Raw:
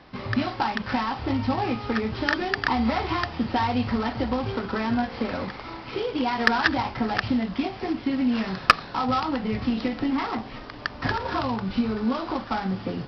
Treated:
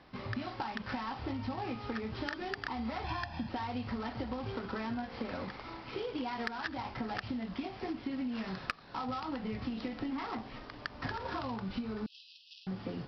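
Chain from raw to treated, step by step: 3.04–3.49 s: comb 1.2 ms, depth 100%; compression 16:1, threshold -25 dBFS, peak gain reduction 17 dB; 12.06–12.67 s: brick-wall FIR high-pass 2.5 kHz; trim -8 dB

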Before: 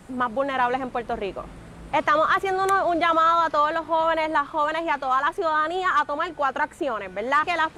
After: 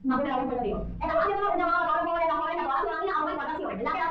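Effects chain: expander on every frequency bin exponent 1.5; de-hum 105.2 Hz, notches 6; low-pass that closes with the level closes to 1.3 kHz, closed at -18.5 dBFS; treble shelf 4.1 kHz -2.5 dB; in parallel at -1.5 dB: compression 10:1, threshold -35 dBFS, peak gain reduction 15.5 dB; on the sum: saturation -19.5 dBFS, distortion -15 dB; plain phase-vocoder stretch 0.55×; distance through air 220 m; simulated room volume 220 m³, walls furnished, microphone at 1.6 m; speed mistake 24 fps film run at 25 fps; decay stretcher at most 32 dB/s

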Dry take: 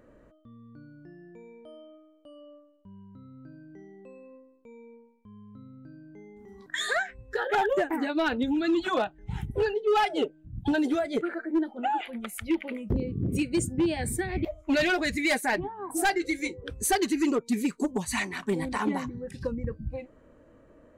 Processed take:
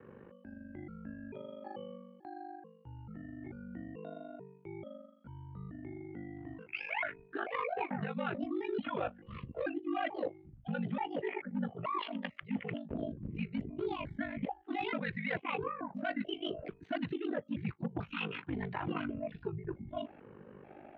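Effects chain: pitch shift switched off and on +6.5 st, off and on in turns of 439 ms; ring modulator 25 Hz; reverse; compression 6:1, threshold -41 dBFS, peak gain reduction 17 dB; reverse; mistuned SSB -100 Hz 200–3200 Hz; trim +7 dB

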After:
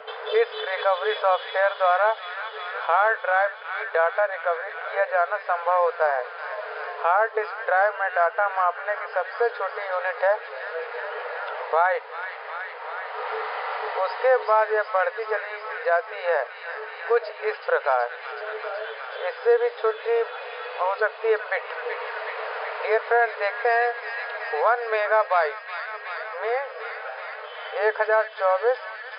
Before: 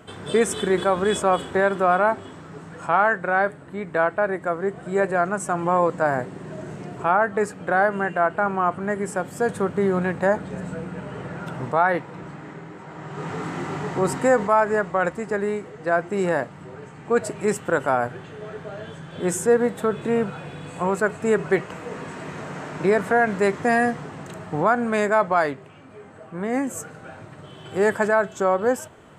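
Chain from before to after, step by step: feedback echo behind a high-pass 374 ms, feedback 76%, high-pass 2.2 kHz, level -5.5 dB; FFT band-pass 430–5100 Hz; three bands compressed up and down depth 40%

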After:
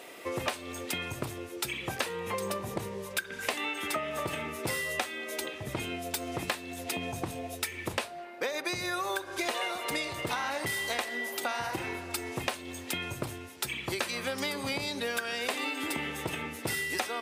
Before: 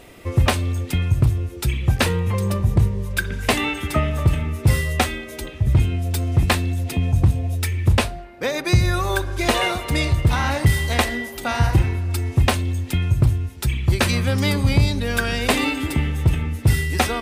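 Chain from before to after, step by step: high-pass 400 Hz 12 dB/octave; compression 10:1, threshold -29 dBFS, peak gain reduction 14.5 dB

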